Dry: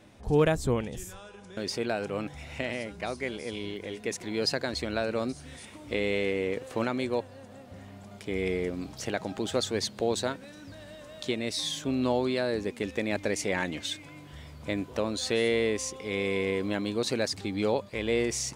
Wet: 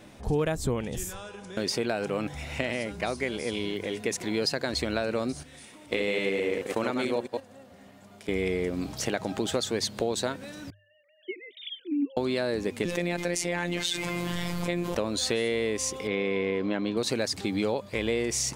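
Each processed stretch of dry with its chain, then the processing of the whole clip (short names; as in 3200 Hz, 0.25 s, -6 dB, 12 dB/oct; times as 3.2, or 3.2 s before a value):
5.43–8.29 reverse delay 0.108 s, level -4.5 dB + low shelf 130 Hz -9 dB + gate -40 dBFS, range -9 dB
10.7–12.17 sine-wave speech + vowel filter i + notch 2600 Hz, Q 24
12.85–14.95 robotiser 174 Hz + fast leveller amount 70%
16.07–16.97 HPF 110 Hz + air absorption 190 m
whole clip: high shelf 11000 Hz +5 dB; notches 50/100 Hz; compressor 4:1, threshold -30 dBFS; gain +5.5 dB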